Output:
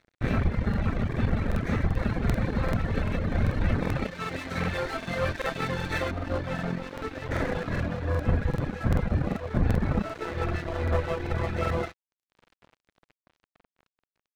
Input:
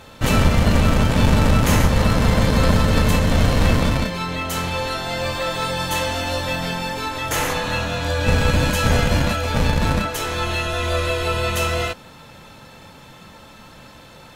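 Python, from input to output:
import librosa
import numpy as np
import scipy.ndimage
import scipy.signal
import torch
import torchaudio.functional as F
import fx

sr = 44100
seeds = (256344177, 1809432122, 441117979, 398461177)

y = fx.lower_of_two(x, sr, delay_ms=0.51)
y = fx.lowpass(y, sr, hz=fx.steps((0.0, 2000.0), (6.11, 1200.0)), slope=12)
y = fx.echo_thinned(y, sr, ms=302, feedback_pct=80, hz=220.0, wet_db=-14)
y = fx.dereverb_blind(y, sr, rt60_s=1.7)
y = np.sign(y) * np.maximum(np.abs(y) - 10.0 ** (-41.0 / 20.0), 0.0)
y = fx.rider(y, sr, range_db=5, speed_s=0.5)
y = fx.buffer_crackle(y, sr, first_s=0.69, period_s=0.39, block=2048, kind='repeat')
y = F.gain(torch.from_numpy(y), -2.5).numpy()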